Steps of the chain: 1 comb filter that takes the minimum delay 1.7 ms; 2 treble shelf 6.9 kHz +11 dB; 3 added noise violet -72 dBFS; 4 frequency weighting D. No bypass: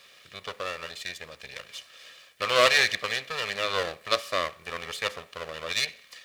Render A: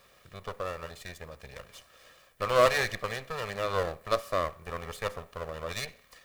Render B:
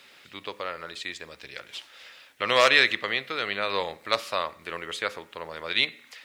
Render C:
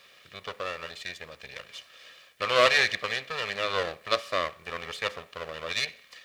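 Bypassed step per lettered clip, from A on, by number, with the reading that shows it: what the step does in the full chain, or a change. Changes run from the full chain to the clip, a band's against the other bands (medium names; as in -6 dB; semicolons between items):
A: 4, 4 kHz band -11.0 dB; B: 1, 8 kHz band -6.5 dB; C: 2, 8 kHz band -5.0 dB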